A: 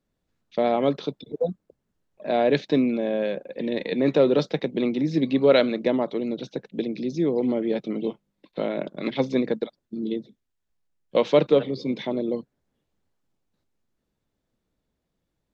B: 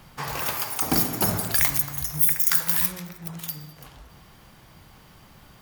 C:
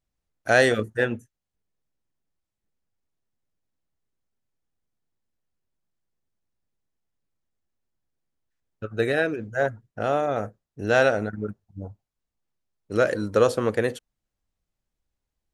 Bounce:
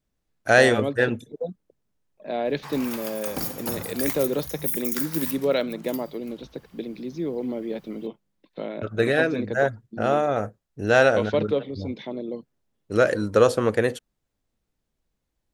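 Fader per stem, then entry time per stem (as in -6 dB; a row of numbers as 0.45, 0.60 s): -5.5, -8.0, +2.0 dB; 0.00, 2.45, 0.00 s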